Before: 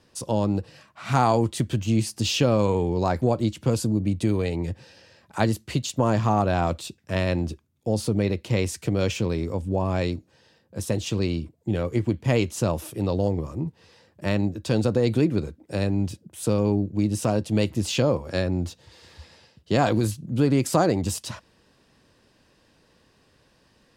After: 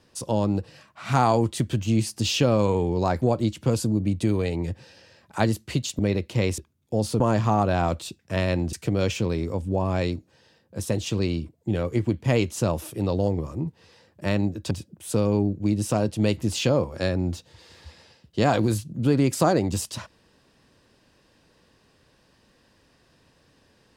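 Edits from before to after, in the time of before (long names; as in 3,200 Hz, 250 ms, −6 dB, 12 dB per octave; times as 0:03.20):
0:05.99–0:07.52: swap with 0:08.14–0:08.73
0:14.71–0:16.04: remove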